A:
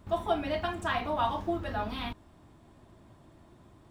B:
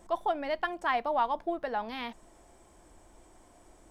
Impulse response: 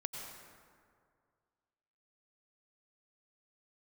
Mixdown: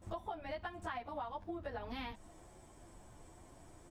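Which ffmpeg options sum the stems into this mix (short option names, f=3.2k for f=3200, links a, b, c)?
-filter_complex "[0:a]lowshelf=f=160:g=9,volume=-11dB[a];[1:a]asplit=2[b][c];[c]adelay=9.4,afreqshift=2.1[d];[b][d]amix=inputs=2:normalize=1,volume=-1,adelay=19,volume=1.5dB[e];[a][e]amix=inputs=2:normalize=0,acompressor=threshold=-39dB:ratio=12"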